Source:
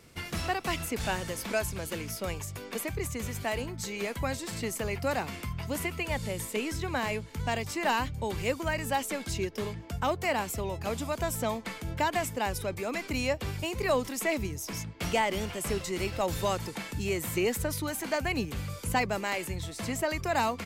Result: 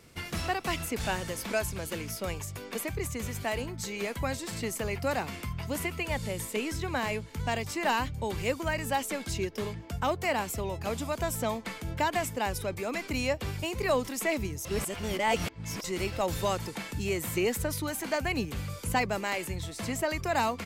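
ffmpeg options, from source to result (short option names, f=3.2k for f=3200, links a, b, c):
-filter_complex "[0:a]asplit=3[a][b][c];[a]atrim=end=14.652[d];[b]atrim=start=14.648:end=15.842,asetpts=PTS-STARTPTS,areverse[e];[c]atrim=start=15.838[f];[d][e]acrossfade=d=0.004:c1=hsin:c2=hsin[g];[g][f]acrossfade=d=0.004:c1=hsin:c2=hsin"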